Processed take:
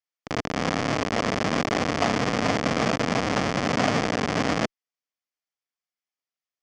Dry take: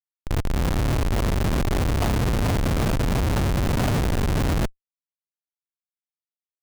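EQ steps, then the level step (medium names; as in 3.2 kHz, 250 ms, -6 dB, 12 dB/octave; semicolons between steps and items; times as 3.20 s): cabinet simulation 320–5700 Hz, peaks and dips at 370 Hz -10 dB, 560 Hz -4 dB, 910 Hz -7 dB, 1.5 kHz -5 dB, 2.7 kHz -4 dB, 3.9 kHz -9 dB; +8.5 dB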